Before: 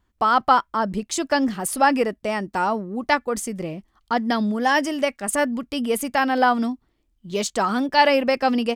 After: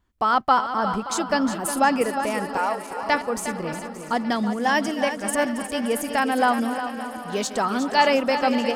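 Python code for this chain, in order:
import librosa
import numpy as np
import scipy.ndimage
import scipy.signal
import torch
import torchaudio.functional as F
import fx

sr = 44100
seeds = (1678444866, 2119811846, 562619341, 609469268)

y = fx.reverse_delay_fb(x, sr, ms=287, feedback_pct=77, wet_db=-13.5)
y = fx.steep_highpass(y, sr, hz=440.0, slope=48, at=(2.57, 3.03))
y = fx.echo_feedback(y, sr, ms=359, feedback_pct=38, wet_db=-10.0)
y = y * 10.0 ** (-2.0 / 20.0)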